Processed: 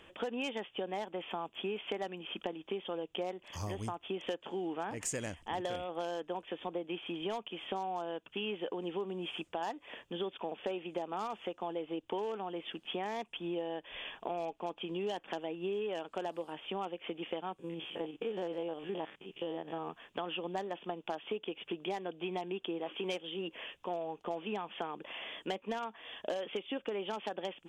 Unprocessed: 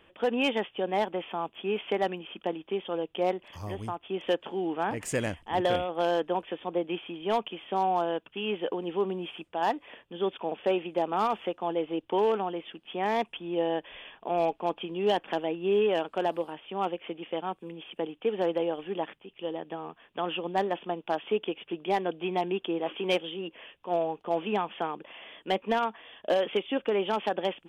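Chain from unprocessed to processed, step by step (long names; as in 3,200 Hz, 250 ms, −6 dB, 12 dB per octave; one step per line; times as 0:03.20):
0:17.59–0:19.88: spectrum averaged block by block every 50 ms
parametric band 6,800 Hz +10.5 dB 0.9 octaves
downward compressor 6 to 1, threshold −37 dBFS, peak gain reduction 15 dB
level +2 dB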